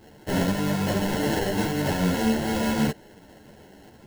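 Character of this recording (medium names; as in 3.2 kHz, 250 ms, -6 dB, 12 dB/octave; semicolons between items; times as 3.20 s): aliases and images of a low sample rate 1.2 kHz, jitter 0%; a shimmering, thickened sound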